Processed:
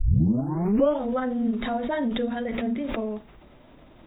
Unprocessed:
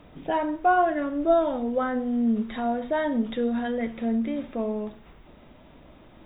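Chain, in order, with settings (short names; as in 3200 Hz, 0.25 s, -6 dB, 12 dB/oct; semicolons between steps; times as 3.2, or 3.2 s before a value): tape start at the beginning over 1.54 s; granular stretch 0.65×, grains 88 ms; backwards sustainer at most 35 dB/s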